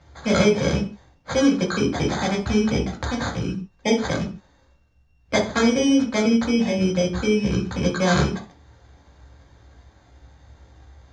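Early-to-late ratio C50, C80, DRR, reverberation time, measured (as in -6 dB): 9.5 dB, 15.5 dB, -2.0 dB, no single decay rate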